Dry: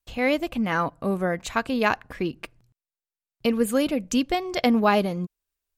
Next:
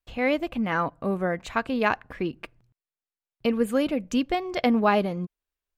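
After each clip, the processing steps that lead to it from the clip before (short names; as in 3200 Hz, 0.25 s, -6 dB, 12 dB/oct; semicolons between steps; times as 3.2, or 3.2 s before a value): tone controls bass -1 dB, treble -9 dB; gain -1 dB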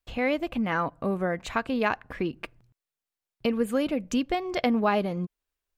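compressor 1.5:1, threshold -32 dBFS, peak gain reduction 6 dB; gain +2.5 dB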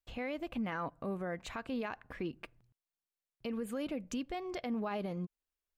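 limiter -21 dBFS, peak gain reduction 9 dB; gain -8 dB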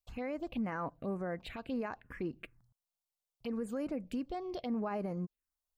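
envelope phaser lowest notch 280 Hz, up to 3500 Hz, full sweep at -34 dBFS; gain +1 dB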